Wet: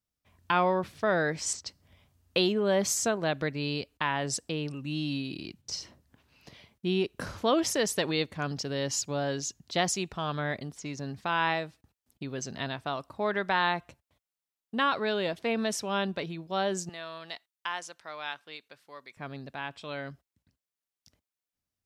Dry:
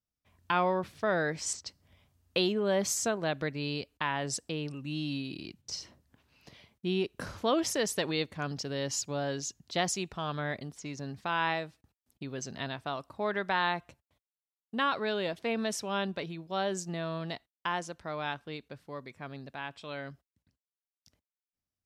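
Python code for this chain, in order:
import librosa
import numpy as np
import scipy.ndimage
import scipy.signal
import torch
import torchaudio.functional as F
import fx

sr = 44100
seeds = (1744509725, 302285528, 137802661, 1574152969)

y = fx.highpass(x, sr, hz=1500.0, slope=6, at=(16.89, 19.17))
y = F.gain(torch.from_numpy(y), 2.5).numpy()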